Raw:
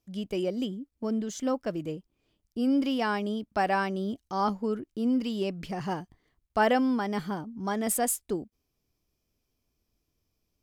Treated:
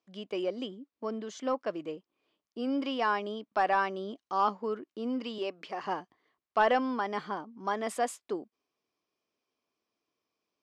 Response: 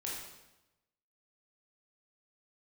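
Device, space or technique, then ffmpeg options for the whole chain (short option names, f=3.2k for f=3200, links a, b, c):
intercom: -filter_complex "[0:a]asettb=1/sr,asplit=3[a][b][c];[a]atrim=end=5.384[d];[b]atrim=start=5.38:end=5.87,asetpts=PTS-STARTPTS,afade=t=in:d=0.004:c=qsin,afade=t=out:st=0.486:d=0.004:c=qsin,highpass=300[e];[c]atrim=start=5.866[f];[d][e]acrossfade=d=0.004:c1=hsin:c2=qsin[g];[g][f]acrossfade=d=0.004:c1=qsin:c2=hsin,highpass=370,lowpass=4.2k,equalizer=f=1.1k:t=o:w=0.27:g=6.5,asoftclip=type=tanh:threshold=-14dB"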